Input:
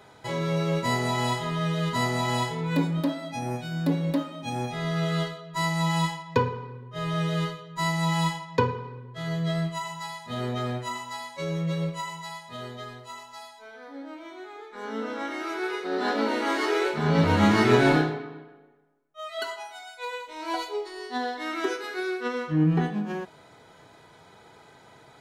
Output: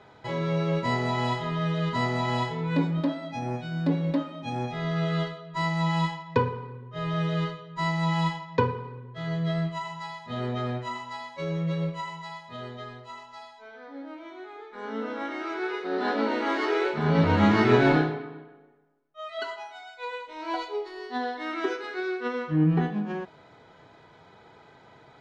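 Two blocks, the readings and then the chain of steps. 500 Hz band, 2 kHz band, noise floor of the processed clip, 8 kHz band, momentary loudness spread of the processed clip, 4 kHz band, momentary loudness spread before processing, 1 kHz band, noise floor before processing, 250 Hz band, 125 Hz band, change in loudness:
-0.5 dB, -1.5 dB, -54 dBFS, under -10 dB, 17 LU, -3.5 dB, 16 LU, -0.5 dB, -53 dBFS, 0.0 dB, 0.0 dB, -0.5 dB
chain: air absorption 140 m

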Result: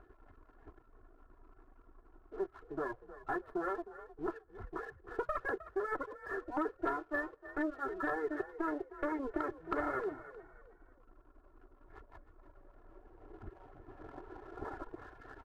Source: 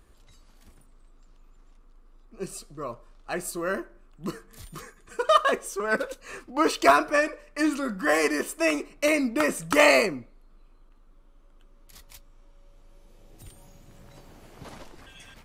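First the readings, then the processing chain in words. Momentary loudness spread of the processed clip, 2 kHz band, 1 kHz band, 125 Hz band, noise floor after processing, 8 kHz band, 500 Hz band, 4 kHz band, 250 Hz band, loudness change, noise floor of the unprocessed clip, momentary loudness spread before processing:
17 LU, -15.0 dB, -12.5 dB, -11.0 dB, -65 dBFS, under -35 dB, -13.5 dB, under -30 dB, -11.0 dB, -15.0 dB, -55 dBFS, 20 LU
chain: minimum comb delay 2.3 ms; reverb removal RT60 0.78 s; elliptic low-pass 1600 Hz, stop band 50 dB; low shelf 100 Hz -11 dB; comb 2.9 ms, depth 72%; compressor 6:1, threshold -40 dBFS, peak gain reduction 23 dB; sample leveller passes 1; frequency-shifting echo 0.31 s, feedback 32%, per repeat +38 Hz, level -15 dB; gain +2 dB

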